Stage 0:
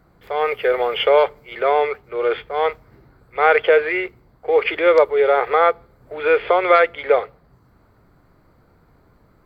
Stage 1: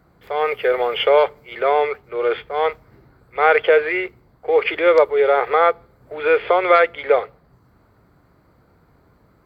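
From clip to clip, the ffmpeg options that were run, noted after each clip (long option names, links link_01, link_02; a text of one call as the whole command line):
ffmpeg -i in.wav -af "highpass=45" out.wav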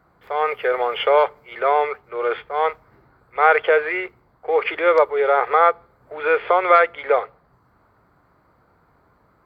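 ffmpeg -i in.wav -af "equalizer=frequency=1100:width_type=o:width=1.9:gain=9,volume=-6.5dB" out.wav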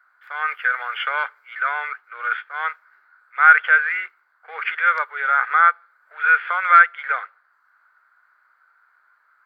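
ffmpeg -i in.wav -af "highpass=frequency=1500:width_type=q:width=6.2,volume=-5.5dB" out.wav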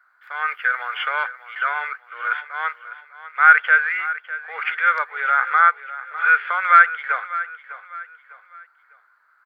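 ffmpeg -i in.wav -af "aecho=1:1:602|1204|1806:0.188|0.0697|0.0258" out.wav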